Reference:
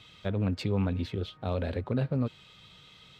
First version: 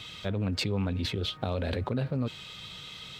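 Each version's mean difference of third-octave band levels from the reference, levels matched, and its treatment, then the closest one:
5.5 dB: high-shelf EQ 2,800 Hz +6 dB
in parallel at −0.5 dB: compressor whose output falls as the input rises −36 dBFS, ratio −0.5
on the sum: level −2.5 dB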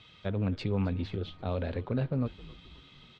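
2.0 dB: low-pass filter 4,800 Hz 12 dB per octave
echo with shifted repeats 266 ms, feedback 55%, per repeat −92 Hz, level −19 dB
level −1.5 dB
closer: second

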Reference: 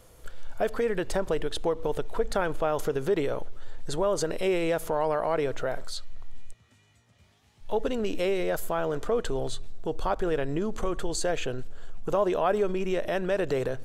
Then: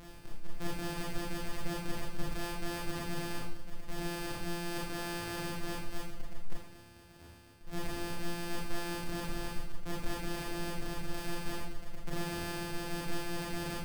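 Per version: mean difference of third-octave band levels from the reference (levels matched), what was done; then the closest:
14.5 dB: samples sorted by size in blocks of 256 samples
brickwall limiter −21 dBFS, peak gain reduction 7.5 dB
reversed playback
downward compressor 8 to 1, threshold −41 dBFS, peak gain reduction 16 dB
reversed playback
four-comb reverb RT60 0.58 s, combs from 26 ms, DRR −5 dB
level +3 dB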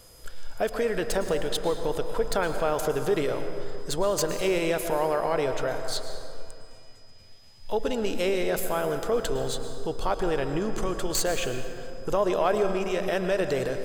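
6.0 dB: stylus tracing distortion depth 0.033 ms
high-shelf EQ 3,100 Hz +7 dB
steady tone 5,000 Hz −57 dBFS
dense smooth reverb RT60 2.7 s, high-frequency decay 0.45×, pre-delay 95 ms, DRR 7 dB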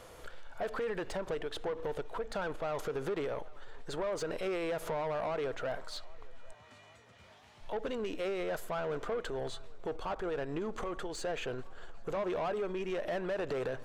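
4.0 dB: low-shelf EQ 130 Hz +5.5 dB
downward compressor 6 to 1, threshold −30 dBFS, peak gain reduction 12 dB
mid-hump overdrive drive 20 dB, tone 2,300 Hz, clips at −21.5 dBFS
feedback echo with a band-pass in the loop 801 ms, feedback 69%, band-pass 1,100 Hz, level −21.5 dB
level −5 dB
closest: third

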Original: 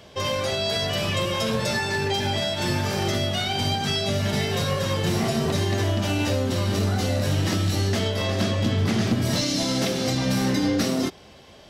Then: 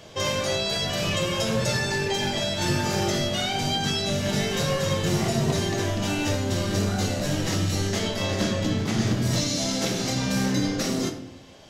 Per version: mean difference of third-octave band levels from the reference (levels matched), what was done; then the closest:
2.0 dB: parametric band 6,700 Hz +7 dB 0.37 octaves
speech leveller 0.5 s
rectangular room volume 120 cubic metres, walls mixed, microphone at 0.59 metres
level −2.5 dB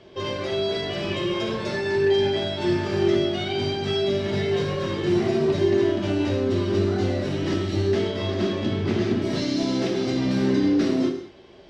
7.0 dB: low-pass filter 4,200 Hz 12 dB per octave
parametric band 350 Hz +13.5 dB 0.4 octaves
reverb whose tail is shaped and stops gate 250 ms falling, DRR 3 dB
level −5 dB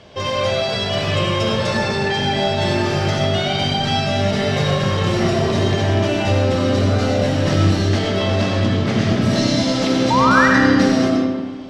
5.0 dB: sound drawn into the spectrogram rise, 0:10.10–0:10.48, 880–2,000 Hz −20 dBFS
high-frequency loss of the air 80 metres
comb and all-pass reverb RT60 1.6 s, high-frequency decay 0.55×, pre-delay 50 ms, DRR −0.5 dB
level +3.5 dB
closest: first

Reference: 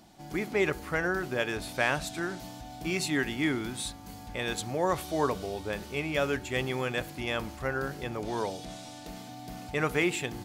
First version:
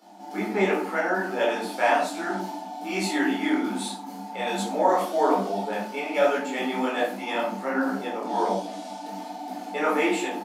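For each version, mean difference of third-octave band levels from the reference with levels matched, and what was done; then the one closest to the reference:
8.5 dB: Chebyshev high-pass with heavy ripple 190 Hz, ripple 9 dB
rectangular room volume 460 cubic metres, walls furnished, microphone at 4.2 metres
downsampling to 32,000 Hz
micro pitch shift up and down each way 44 cents
level +8 dB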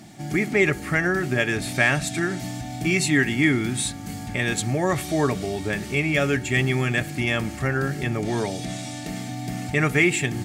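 3.0 dB: graphic EQ with 10 bands 125 Hz +11 dB, 250 Hz +5 dB, 500 Hz +4 dB, 1,000 Hz −3 dB, 2,000 Hz +11 dB, 8,000 Hz +9 dB
in parallel at −1 dB: downward compressor, threshold −30 dBFS, peak gain reduction 14.5 dB
on the sum: bit-depth reduction 12 bits, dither triangular
notch comb filter 500 Hz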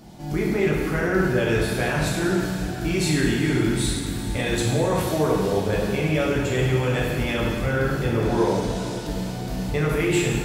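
5.0 dB: low-shelf EQ 290 Hz +10 dB
brickwall limiter −21.5 dBFS, peak gain reduction 10 dB
feedback delay with all-pass diffusion 452 ms, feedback 59%, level −13 dB
dense smooth reverb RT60 1.4 s, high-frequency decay 0.9×, DRR −4 dB
level +3.5 dB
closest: second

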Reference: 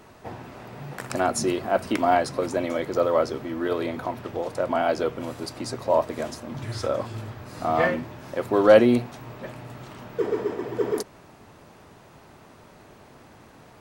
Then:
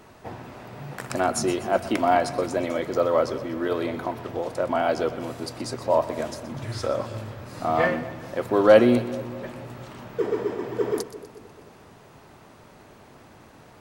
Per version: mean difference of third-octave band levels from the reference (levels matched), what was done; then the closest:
1.0 dB: echo with a time of its own for lows and highs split 600 Hz, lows 217 ms, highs 123 ms, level −14.5 dB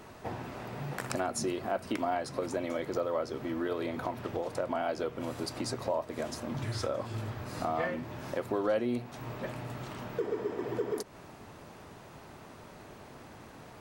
5.5 dB: downward compressor 3 to 1, threshold −32 dBFS, peak gain reduction 16.5 dB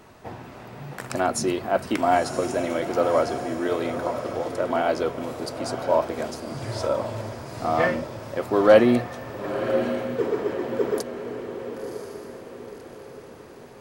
3.5 dB: feedback delay with all-pass diffusion 1,034 ms, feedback 44%, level −8 dB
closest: first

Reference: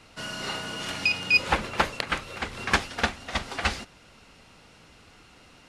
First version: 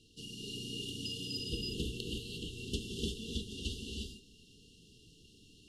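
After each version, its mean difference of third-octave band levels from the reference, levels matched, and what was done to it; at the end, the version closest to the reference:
13.5 dB: dynamic equaliser 5,200 Hz, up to −6 dB, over −43 dBFS, Q 0.99
linear-phase brick-wall band-stop 480–2,700 Hz
reverb whose tail is shaped and stops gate 380 ms rising, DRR −1.5 dB
level −8 dB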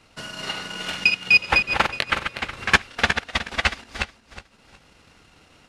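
5.5 dB: feedback delay that plays each chunk backwards 183 ms, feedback 53%, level −3.5 dB
dynamic equaliser 2,500 Hz, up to +5 dB, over −36 dBFS, Q 0.78
transient designer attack +5 dB, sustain −9 dB
level −2.5 dB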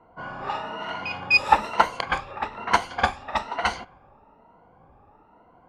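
7.5 dB: rippled gain that drifts along the octave scale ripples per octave 1.9, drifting +1.1 Hz, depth 12 dB
parametric band 890 Hz +13.5 dB 1.1 octaves
low-pass that shuts in the quiet parts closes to 750 Hz, open at −14.5 dBFS
level −4.5 dB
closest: second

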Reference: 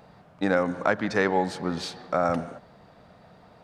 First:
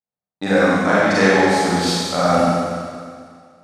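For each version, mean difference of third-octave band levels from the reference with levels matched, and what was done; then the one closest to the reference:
8.5 dB: noise gate −43 dBFS, range −52 dB
high-shelf EQ 5,200 Hz +11.5 dB
four-comb reverb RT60 2 s, combs from 31 ms, DRR −9.5 dB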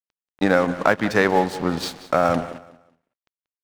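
6.5 dB: in parallel at 0 dB: downward compressor, threshold −32 dBFS, peak gain reduction 14 dB
on the sum: dead-zone distortion −36 dBFS
repeating echo 185 ms, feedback 27%, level −17 dB
level +4.5 dB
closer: second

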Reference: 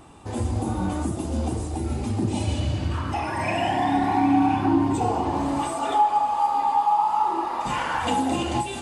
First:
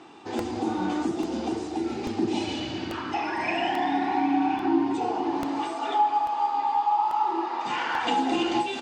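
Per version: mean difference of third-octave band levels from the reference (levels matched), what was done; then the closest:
4.5 dB: speech leveller within 4 dB 2 s
loudspeaker in its box 330–5,800 Hz, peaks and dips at 340 Hz +5 dB, 570 Hz −10 dB, 1,100 Hz −5 dB
slap from a distant wall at 91 metres, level −16 dB
regular buffer underruns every 0.84 s, samples 64, repeat, from 0:00.39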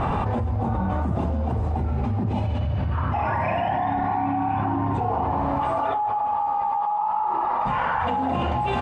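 6.5 dB: low-pass filter 1,600 Hz 12 dB per octave
parametric band 320 Hz −14 dB 0.53 octaves
single-tap delay 1,047 ms −19.5 dB
envelope flattener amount 100%
level −7.5 dB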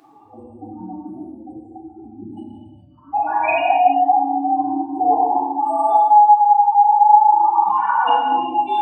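17.5 dB: expanding power law on the bin magnitudes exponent 3.4
high-pass filter 720 Hz 12 dB per octave
in parallel at +0.5 dB: brickwall limiter −24 dBFS, peak gain reduction 9 dB
on the sum: reverb whose tail is shaped and stops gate 450 ms falling, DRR −5 dB
level +1 dB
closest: first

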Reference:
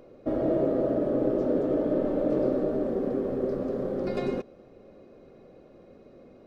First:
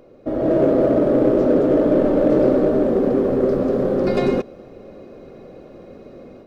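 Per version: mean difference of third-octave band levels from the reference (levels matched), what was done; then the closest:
1.5 dB: automatic gain control gain up to 8.5 dB
in parallel at −7.5 dB: hard clipping −19 dBFS, distortion −9 dB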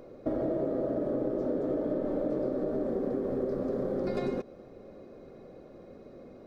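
2.5 dB: parametric band 2,800 Hz −6 dB 0.38 octaves
downward compressor, threshold −30 dBFS, peak gain reduction 9.5 dB
level +2.5 dB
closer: first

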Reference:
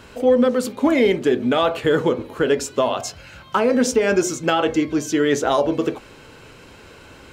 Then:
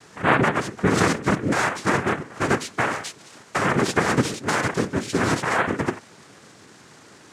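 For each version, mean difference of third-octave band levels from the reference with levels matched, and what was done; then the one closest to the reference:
8.0 dB: noise gate with hold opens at −41 dBFS
cochlear-implant simulation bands 3
level −3.5 dB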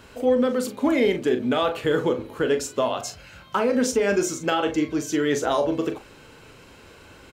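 1.0 dB: high-shelf EQ 11,000 Hz +4.5 dB
double-tracking delay 40 ms −9.5 dB
level −4.5 dB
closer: second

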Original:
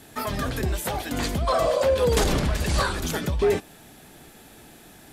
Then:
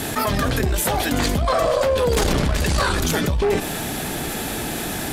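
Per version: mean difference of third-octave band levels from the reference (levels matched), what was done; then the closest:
7.0 dB: harmonic generator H 2 −12 dB, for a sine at −13.5 dBFS
envelope flattener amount 70%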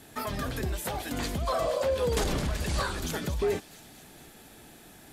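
2.0 dB: in parallel at −1.5 dB: downward compressor, threshold −29 dBFS, peak gain reduction 11.5 dB
on the sum: delay with a high-pass on its return 229 ms, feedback 65%, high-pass 3,500 Hz, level −11 dB
level −8.5 dB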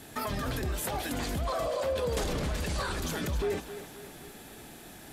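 5.0 dB: brickwall limiter −24.5 dBFS, peak gain reduction 10.5 dB
feedback echo with a high-pass in the loop 265 ms, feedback 51%, high-pass 200 Hz, level −11 dB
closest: second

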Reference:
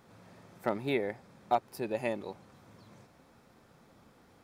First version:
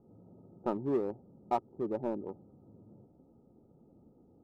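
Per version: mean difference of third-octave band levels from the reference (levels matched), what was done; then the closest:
8.5 dB: adaptive Wiener filter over 41 samples
Chebyshev low-pass with heavy ripple 1,300 Hz, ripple 6 dB
in parallel at −3 dB: hard clipping −36 dBFS, distortion −5 dB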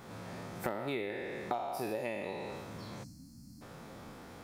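11.5 dB: peak hold with a decay on every bin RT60 1.03 s
downward compressor 8 to 1, threshold −42 dBFS, peak gain reduction 20.5 dB
gain on a spectral selection 0:03.04–0:03.62, 310–4,100 Hz −26 dB
level +8.5 dB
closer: first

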